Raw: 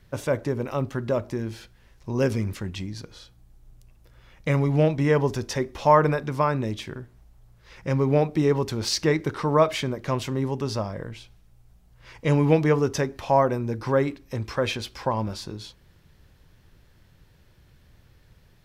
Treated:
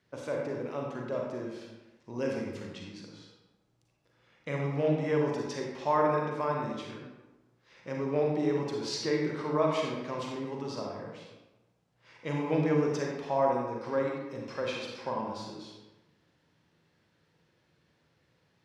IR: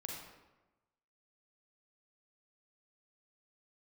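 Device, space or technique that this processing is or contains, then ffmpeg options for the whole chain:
supermarket ceiling speaker: -filter_complex "[0:a]highpass=200,lowpass=7k[a];[1:a]atrim=start_sample=2205[b];[a][b]afir=irnorm=-1:irlink=0,volume=-5.5dB"

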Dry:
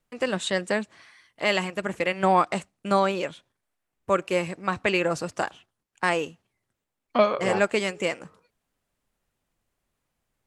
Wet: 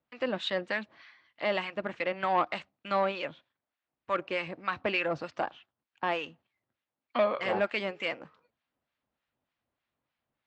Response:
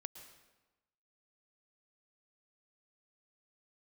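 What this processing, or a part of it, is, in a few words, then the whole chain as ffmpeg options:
guitar amplifier with harmonic tremolo: -filter_complex "[0:a]acrossover=split=1100[a][b];[a]aeval=exprs='val(0)*(1-0.7/2+0.7/2*cos(2*PI*3.3*n/s))':c=same[c];[b]aeval=exprs='val(0)*(1-0.7/2-0.7/2*cos(2*PI*3.3*n/s))':c=same[d];[c][d]amix=inputs=2:normalize=0,asoftclip=type=tanh:threshold=-17.5dB,highpass=100,equalizer=f=110:t=q:w=4:g=-5,equalizer=f=180:t=q:w=4:g=-7,equalizer=f=410:t=q:w=4:g=-6,lowpass=f=4.2k:w=0.5412,lowpass=f=4.2k:w=1.3066"

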